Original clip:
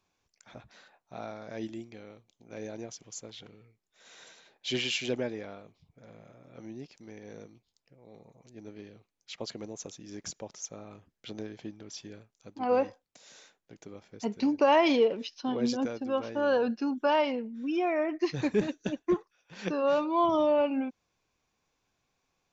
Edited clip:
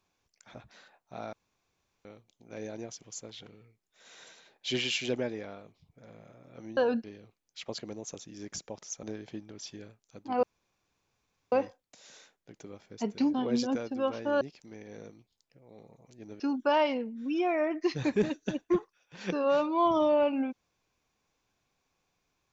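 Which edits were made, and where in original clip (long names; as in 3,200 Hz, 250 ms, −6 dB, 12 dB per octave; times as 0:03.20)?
0:01.33–0:02.05: fill with room tone
0:06.77–0:08.76: swap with 0:16.51–0:16.78
0:10.75–0:11.34: remove
0:12.74: splice in room tone 1.09 s
0:14.56–0:15.44: remove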